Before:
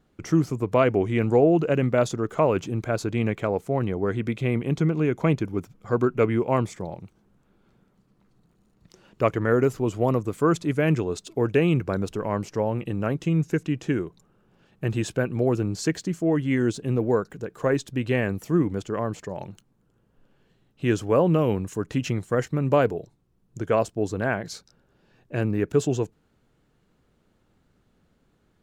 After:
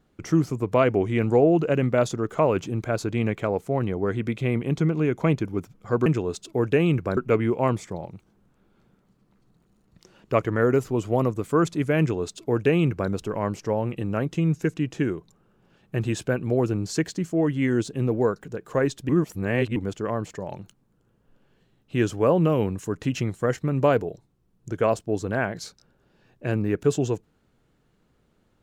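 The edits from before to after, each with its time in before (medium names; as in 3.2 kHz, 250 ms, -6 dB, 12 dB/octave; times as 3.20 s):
10.88–11.99 s: copy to 6.06 s
17.98–18.65 s: reverse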